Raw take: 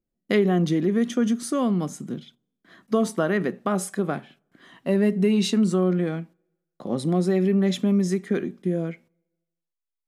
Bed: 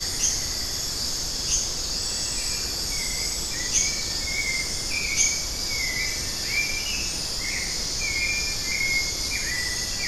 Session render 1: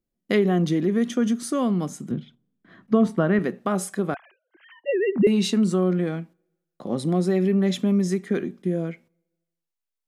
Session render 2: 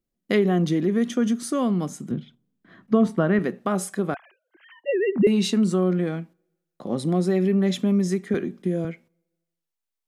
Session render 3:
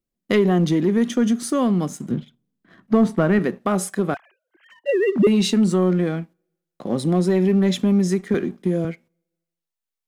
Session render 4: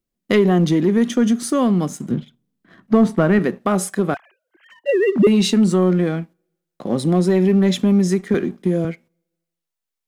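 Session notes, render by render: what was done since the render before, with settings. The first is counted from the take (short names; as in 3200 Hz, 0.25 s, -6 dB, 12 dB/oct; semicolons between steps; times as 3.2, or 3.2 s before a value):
2.11–3.39 tone controls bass +8 dB, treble -14 dB; 4.14–5.27 sine-wave speech
8.34–8.85 three-band squash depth 40%
sample leveller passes 1
gain +2.5 dB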